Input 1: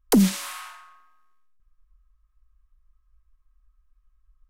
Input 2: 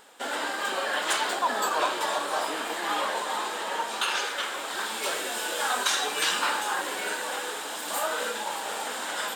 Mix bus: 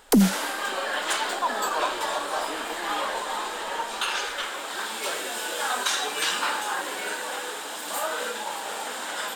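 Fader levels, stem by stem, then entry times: −0.5, 0.0 decibels; 0.00, 0.00 seconds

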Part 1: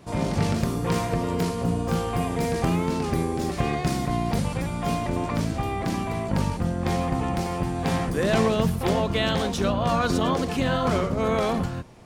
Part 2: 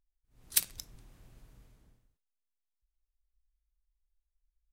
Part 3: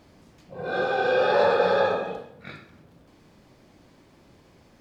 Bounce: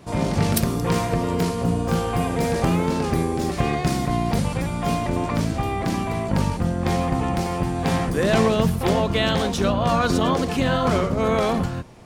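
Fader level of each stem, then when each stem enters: +3.0, +1.0, −15.5 decibels; 0.00, 0.00, 1.20 seconds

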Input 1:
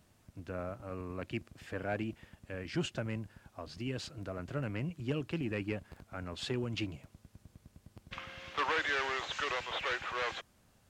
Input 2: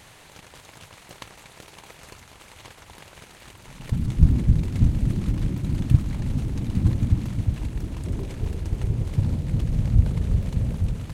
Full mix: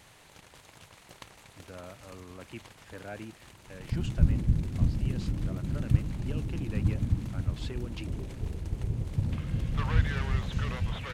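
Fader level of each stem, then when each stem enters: −5.5, −7.0 decibels; 1.20, 0.00 seconds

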